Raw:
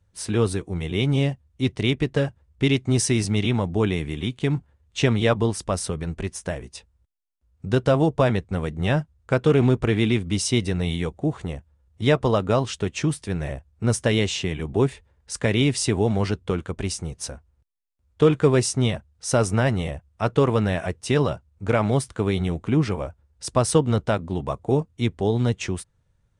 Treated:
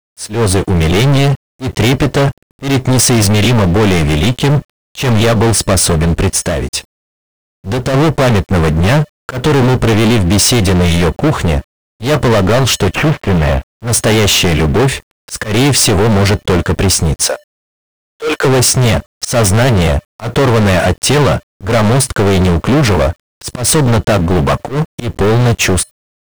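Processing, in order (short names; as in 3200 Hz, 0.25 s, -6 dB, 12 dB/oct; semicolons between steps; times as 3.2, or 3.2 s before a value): 12.95–13.68 CVSD 16 kbps; 17.24–18.45 HPF 460 Hz 24 dB/oct; limiter -13.5 dBFS, peak gain reduction 7 dB; AGC gain up to 13 dB; sample leveller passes 5; auto swell 0.138 s; 6.39–7.94 compressor, threshold -9 dBFS, peak gain reduction 5 dB; resonator 590 Hz, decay 0.25 s, harmonics odd, mix 40%; requantised 8-bit, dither none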